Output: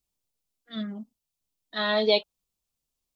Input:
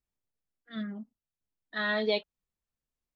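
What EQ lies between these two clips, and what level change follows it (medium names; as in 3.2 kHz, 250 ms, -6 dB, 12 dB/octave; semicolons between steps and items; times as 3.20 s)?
tilt shelf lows -4 dB, about 1.1 kHz; peaking EQ 1.7 kHz -11 dB 0.89 oct; dynamic bell 750 Hz, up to +4 dB, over -45 dBFS, Q 0.74; +6.5 dB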